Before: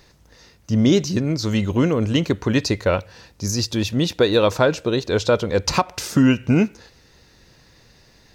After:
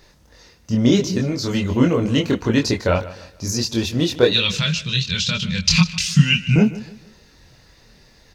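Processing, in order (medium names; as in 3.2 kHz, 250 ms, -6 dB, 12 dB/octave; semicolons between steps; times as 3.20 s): 4.31–6.56 s: FFT filter 120 Hz 0 dB, 170 Hz +12 dB, 290 Hz -23 dB, 800 Hz -21 dB, 2.8 kHz +11 dB, 7 kHz +4 dB, 12 kHz -8 dB; chorus voices 4, 0.58 Hz, delay 24 ms, depth 2.7 ms; feedback delay 151 ms, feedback 35%, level -17 dB; trim +4 dB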